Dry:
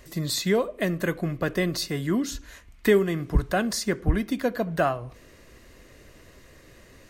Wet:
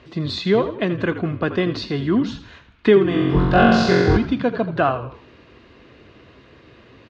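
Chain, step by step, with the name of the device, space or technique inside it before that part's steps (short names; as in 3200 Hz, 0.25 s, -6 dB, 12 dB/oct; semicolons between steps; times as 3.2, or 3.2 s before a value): 3.09–4.17 flutter echo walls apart 3.8 m, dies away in 1.3 s; frequency-shifting delay pedal into a guitar cabinet (frequency-shifting echo 82 ms, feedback 43%, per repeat -59 Hz, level -12 dB; speaker cabinet 94–3700 Hz, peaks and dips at 170 Hz -4 dB, 570 Hz -6 dB, 1900 Hz -8 dB); gain +7 dB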